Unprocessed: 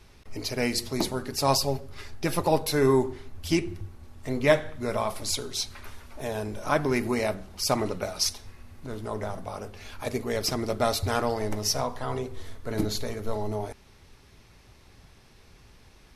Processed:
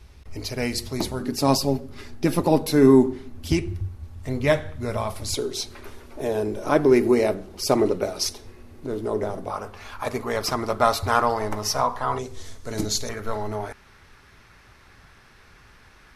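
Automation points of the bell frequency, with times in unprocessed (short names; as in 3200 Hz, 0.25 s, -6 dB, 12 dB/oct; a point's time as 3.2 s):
bell +12 dB 1.2 oct
62 Hz
from 1.2 s 250 Hz
from 3.52 s 80 Hz
from 5.34 s 370 Hz
from 9.5 s 1100 Hz
from 12.19 s 6600 Hz
from 13.09 s 1500 Hz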